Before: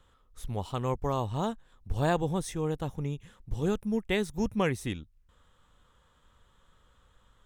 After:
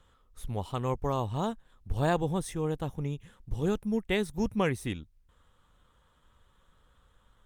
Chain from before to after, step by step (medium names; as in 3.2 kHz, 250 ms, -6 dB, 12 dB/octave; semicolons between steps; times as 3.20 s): Opus 48 kbps 48 kHz